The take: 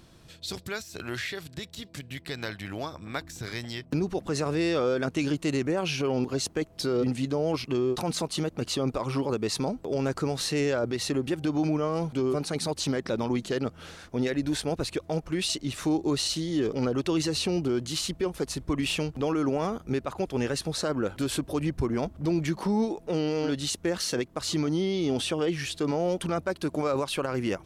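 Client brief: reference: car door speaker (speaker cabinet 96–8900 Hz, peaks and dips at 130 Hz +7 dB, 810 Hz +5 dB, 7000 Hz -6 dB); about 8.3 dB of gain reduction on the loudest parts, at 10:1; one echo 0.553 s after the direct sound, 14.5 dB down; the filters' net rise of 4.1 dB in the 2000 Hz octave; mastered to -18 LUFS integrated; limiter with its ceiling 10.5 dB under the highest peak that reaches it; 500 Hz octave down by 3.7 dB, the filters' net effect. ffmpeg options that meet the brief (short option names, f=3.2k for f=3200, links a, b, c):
-af "equalizer=f=500:t=o:g=-5.5,equalizer=f=2k:t=o:g=5.5,acompressor=threshold=-32dB:ratio=10,alimiter=level_in=5.5dB:limit=-24dB:level=0:latency=1,volume=-5.5dB,highpass=96,equalizer=f=130:t=q:w=4:g=7,equalizer=f=810:t=q:w=4:g=5,equalizer=f=7k:t=q:w=4:g=-6,lowpass=f=8.9k:w=0.5412,lowpass=f=8.9k:w=1.3066,aecho=1:1:553:0.188,volume=20dB"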